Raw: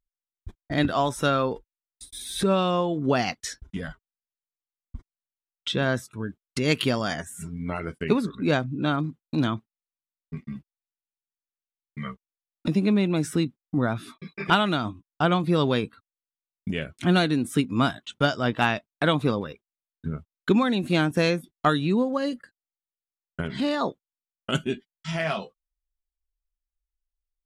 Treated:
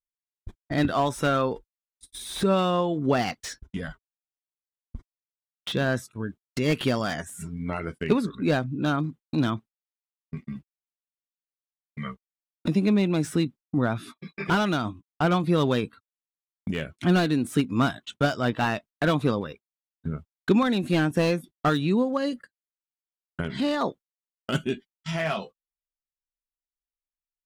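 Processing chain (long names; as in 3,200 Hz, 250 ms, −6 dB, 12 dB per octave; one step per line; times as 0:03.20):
noise gate −42 dBFS, range −18 dB
slew-rate limiting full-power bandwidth 130 Hz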